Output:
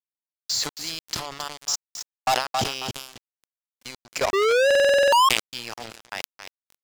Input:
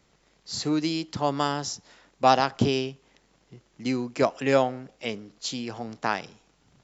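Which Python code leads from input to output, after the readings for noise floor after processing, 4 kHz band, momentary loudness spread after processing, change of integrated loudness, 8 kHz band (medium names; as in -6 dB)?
under -85 dBFS, +7.5 dB, 20 LU, +4.5 dB, no reading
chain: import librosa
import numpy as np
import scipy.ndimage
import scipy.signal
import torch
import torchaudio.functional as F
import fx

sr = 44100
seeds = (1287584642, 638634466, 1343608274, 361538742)

p1 = fx.level_steps(x, sr, step_db=20)
p2 = fx.tilt_eq(p1, sr, slope=2.5)
p3 = fx.step_gate(p2, sr, bpm=152, pattern='..xx.xx.xx.xxxx', floor_db=-60.0, edge_ms=4.5)
p4 = p3 + fx.echo_feedback(p3, sr, ms=271, feedback_pct=24, wet_db=-8.5, dry=0)
p5 = fx.spec_paint(p4, sr, seeds[0], shape='rise', start_s=4.33, length_s=0.96, low_hz=380.0, high_hz=1100.0, level_db=-12.0)
p6 = fx.leveller(p5, sr, passes=5)
p7 = fx.peak_eq(p6, sr, hz=280.0, db=-9.5, octaves=1.3)
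p8 = np.sign(p7) * np.maximum(np.abs(p7) - 10.0 ** (-39.0 / 20.0), 0.0)
p9 = fx.buffer_glitch(p8, sr, at_s=(4.66,), block=2048, repeats=9)
p10 = fx.sustainer(p9, sr, db_per_s=88.0)
y = F.gain(torch.from_numpy(p10), -7.5).numpy()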